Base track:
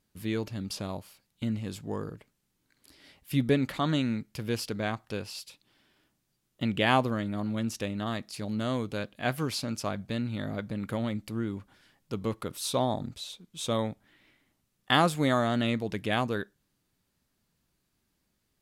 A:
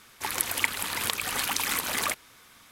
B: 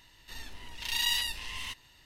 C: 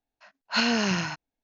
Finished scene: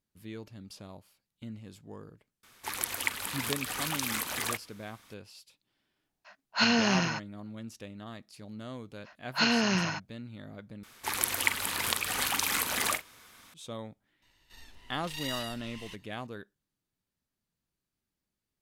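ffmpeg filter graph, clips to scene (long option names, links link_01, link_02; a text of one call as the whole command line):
ffmpeg -i bed.wav -i cue0.wav -i cue1.wav -i cue2.wav -filter_complex "[1:a]asplit=2[link_01][link_02];[3:a]asplit=2[link_03][link_04];[0:a]volume=-11.5dB[link_05];[link_02]asplit=2[link_06][link_07];[link_07]adelay=44,volume=-11.5dB[link_08];[link_06][link_08]amix=inputs=2:normalize=0[link_09];[link_05]asplit=2[link_10][link_11];[link_10]atrim=end=10.834[link_12];[link_09]atrim=end=2.71,asetpts=PTS-STARTPTS,volume=-1.5dB[link_13];[link_11]atrim=start=13.536[link_14];[link_01]atrim=end=2.71,asetpts=PTS-STARTPTS,volume=-5dB,afade=type=in:duration=0.004:curve=hsin,afade=type=out:start_time=2.706:duration=0.004:curve=hsin,adelay=2430[link_15];[link_03]atrim=end=1.43,asetpts=PTS-STARTPTS,volume=-1dB,afade=type=in:duration=0.004:curve=hsin,afade=type=out:start_time=1.426:duration=0.004:curve=hsin,adelay=6040[link_16];[link_04]atrim=end=1.43,asetpts=PTS-STARTPTS,volume=-2dB,afade=type=in:duration=0.004:curve=hsin,afade=type=out:start_time=1.426:duration=0.004:curve=hsin,adelay=8840[link_17];[2:a]atrim=end=2.05,asetpts=PTS-STARTPTS,volume=-9dB,afade=type=in:duration=0.004:curve=hsin,afade=type=out:start_time=2.046:duration=0.004:curve=hsin,adelay=14220[link_18];[link_12][link_13]acrossfade=duration=0.004:curve1=hsin:curve2=hsin[link_19];[link_19][link_14]acrossfade=duration=0.004:curve1=hsin:curve2=hsin[link_20];[link_20][link_15][link_16][link_17][link_18]amix=inputs=5:normalize=0" out.wav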